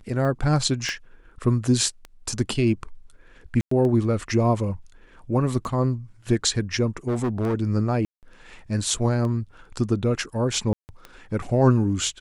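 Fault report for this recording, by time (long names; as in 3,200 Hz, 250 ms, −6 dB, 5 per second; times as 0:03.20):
scratch tick 33 1/3 rpm −21 dBFS
0:00.89: click −16 dBFS
0:03.61–0:03.71: drop-out 104 ms
0:07.08–0:07.55: clipping −20.5 dBFS
0:08.05–0:08.23: drop-out 178 ms
0:10.73–0:10.89: drop-out 159 ms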